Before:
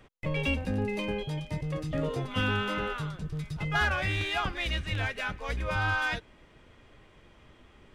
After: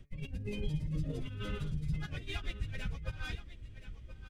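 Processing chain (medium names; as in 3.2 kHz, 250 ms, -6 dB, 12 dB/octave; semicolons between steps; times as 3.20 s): amplifier tone stack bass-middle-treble 10-0-1; de-hum 143 Hz, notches 18; compressor with a negative ratio -47 dBFS, ratio -0.5; plain phase-vocoder stretch 0.54×; on a send: delay 1025 ms -13 dB; on the sum: trim +15 dB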